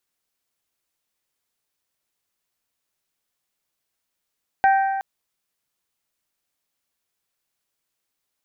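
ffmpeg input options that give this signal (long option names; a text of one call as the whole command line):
ffmpeg -f lavfi -i "aevalsrc='0.251*pow(10,-3*t/1.76)*sin(2*PI*779*t)+0.1*pow(10,-3*t/1.43)*sin(2*PI*1558*t)+0.0398*pow(10,-3*t/1.353)*sin(2*PI*1869.6*t)+0.0158*pow(10,-3*t/1.266)*sin(2*PI*2337*t)':duration=0.37:sample_rate=44100" out.wav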